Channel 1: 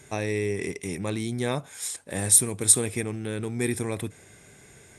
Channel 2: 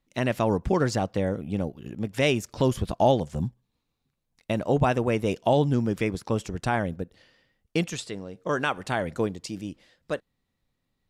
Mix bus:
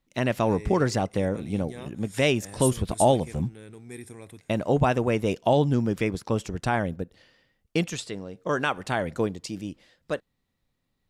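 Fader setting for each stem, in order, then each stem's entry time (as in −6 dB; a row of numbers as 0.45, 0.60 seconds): −14.0, +0.5 decibels; 0.30, 0.00 seconds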